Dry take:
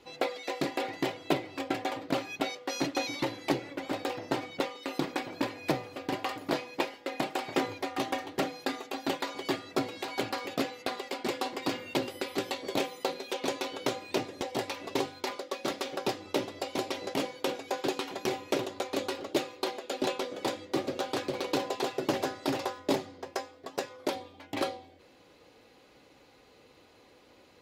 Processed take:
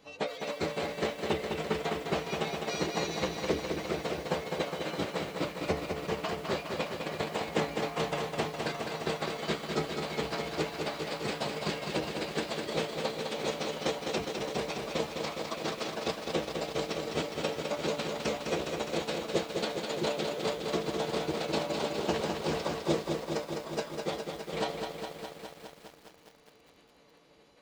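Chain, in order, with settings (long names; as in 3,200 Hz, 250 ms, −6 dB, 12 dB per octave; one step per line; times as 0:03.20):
spectral magnitudes quantised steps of 15 dB
phase-vocoder pitch shift with formants kept −9.5 semitones
feedback echo at a low word length 206 ms, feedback 80%, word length 9 bits, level −5 dB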